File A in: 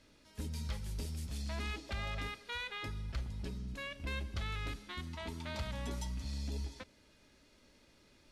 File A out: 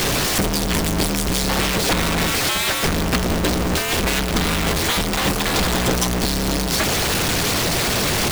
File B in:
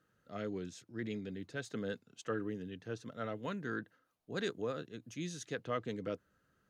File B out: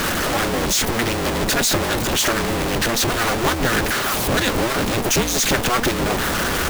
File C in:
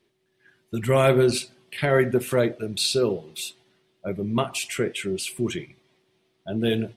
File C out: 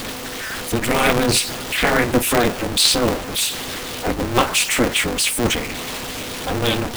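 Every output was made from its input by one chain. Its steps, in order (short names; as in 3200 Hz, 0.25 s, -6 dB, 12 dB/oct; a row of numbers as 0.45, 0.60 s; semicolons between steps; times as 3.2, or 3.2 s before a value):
zero-crossing step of -27.5 dBFS; harmonic-percussive split harmonic -11 dB; dynamic EQ 490 Hz, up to -6 dB, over -43 dBFS, Q 3; polarity switched at an audio rate 120 Hz; match loudness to -19 LUFS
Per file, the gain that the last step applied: +17.5, +17.0, +10.0 dB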